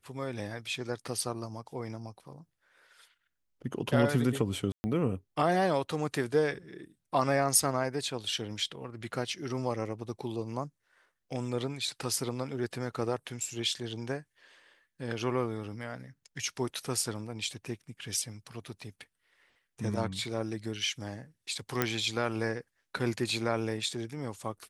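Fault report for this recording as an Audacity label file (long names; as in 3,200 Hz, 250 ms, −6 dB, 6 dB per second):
4.720000	4.840000	drop-out 120 ms
21.820000	21.820000	click −11 dBFS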